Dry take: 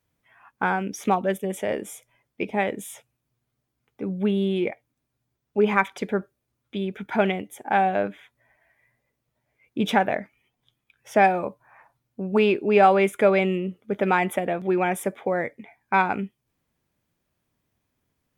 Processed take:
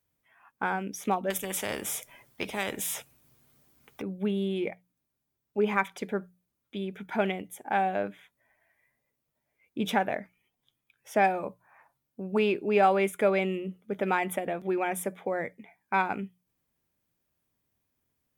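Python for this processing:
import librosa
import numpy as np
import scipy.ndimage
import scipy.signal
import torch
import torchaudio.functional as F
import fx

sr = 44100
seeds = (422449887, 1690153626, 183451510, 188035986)

y = fx.high_shelf(x, sr, hz=8600.0, db=9.0)
y = fx.hum_notches(y, sr, base_hz=60, count=3)
y = fx.spectral_comp(y, sr, ratio=2.0, at=(1.3, 4.02))
y = y * 10.0 ** (-6.0 / 20.0)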